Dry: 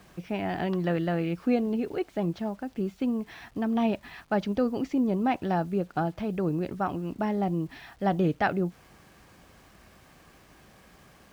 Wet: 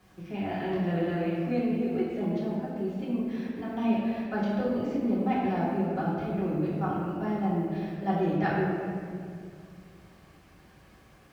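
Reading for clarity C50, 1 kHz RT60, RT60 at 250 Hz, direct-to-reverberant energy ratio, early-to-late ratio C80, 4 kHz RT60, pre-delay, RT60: -1.0 dB, 1.9 s, 2.9 s, -9.0 dB, 0.5 dB, 1.3 s, 3 ms, 2.3 s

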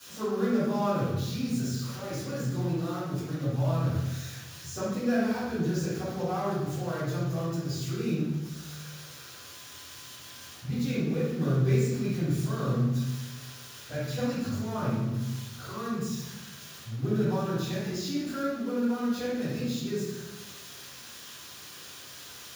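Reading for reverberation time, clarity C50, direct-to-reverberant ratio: 1.1 s, -2.5 dB, -14.5 dB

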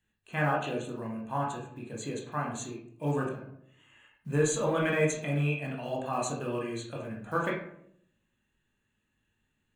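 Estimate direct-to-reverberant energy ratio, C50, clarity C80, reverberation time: -3.0 dB, 4.5 dB, 8.5 dB, 0.70 s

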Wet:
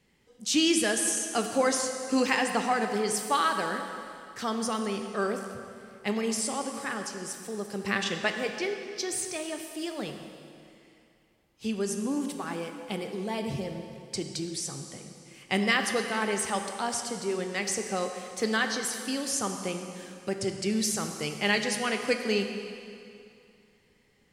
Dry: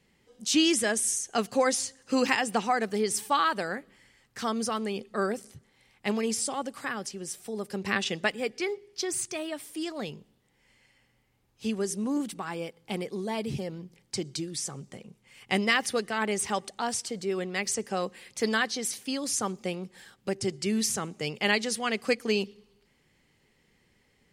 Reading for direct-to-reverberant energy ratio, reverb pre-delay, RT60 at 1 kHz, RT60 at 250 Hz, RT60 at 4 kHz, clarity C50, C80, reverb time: 5.0 dB, 12 ms, 2.6 s, 2.4 s, 2.3 s, 6.0 dB, 6.5 dB, 2.5 s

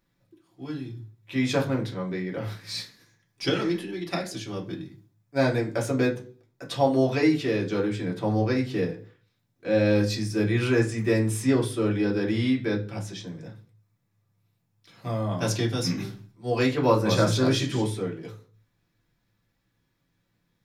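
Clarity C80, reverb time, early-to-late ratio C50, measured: 18.0 dB, 0.40 s, 13.0 dB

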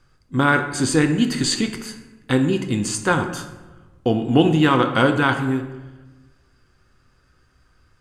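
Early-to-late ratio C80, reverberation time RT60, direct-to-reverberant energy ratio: 11.0 dB, 1.2 s, 6.0 dB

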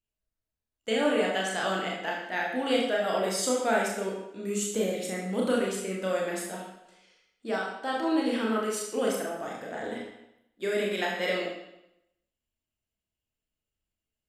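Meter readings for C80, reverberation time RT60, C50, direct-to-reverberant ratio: 5.5 dB, 0.85 s, 3.0 dB, -3.0 dB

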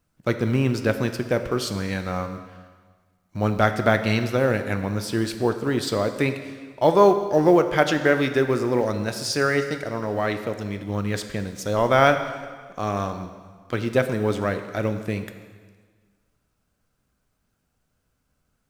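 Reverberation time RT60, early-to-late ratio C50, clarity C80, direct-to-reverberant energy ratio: 1.6 s, 9.5 dB, 10.5 dB, 8.0 dB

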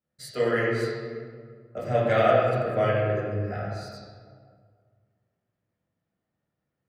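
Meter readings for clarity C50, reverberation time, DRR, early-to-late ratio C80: -2.5 dB, 1.9 s, -9.5 dB, 0.0 dB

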